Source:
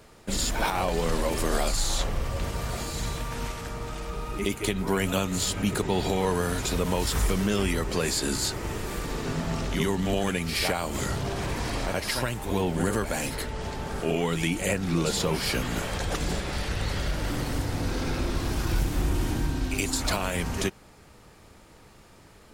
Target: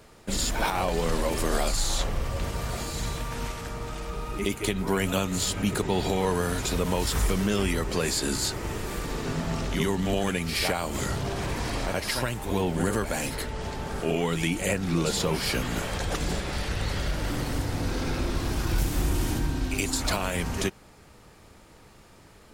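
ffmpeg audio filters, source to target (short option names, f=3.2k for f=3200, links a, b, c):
-filter_complex "[0:a]asettb=1/sr,asplit=3[a][b][c];[a]atrim=end=18.784[d];[b]atrim=start=18.78:end=19.39,asetpts=PTS-STARTPTS,afade=t=in:d=0.004:c=qsin,afade=t=out:st=0.606:d=0.004:c=qsin,highshelf=f=4.8k:g=6[e];[c]atrim=start=19.386[f];[d][e]acrossfade=d=0.004:c1=hsin:c2=qsin[g];[g][f]acrossfade=d=0.004:c1=qsin:c2=hsin"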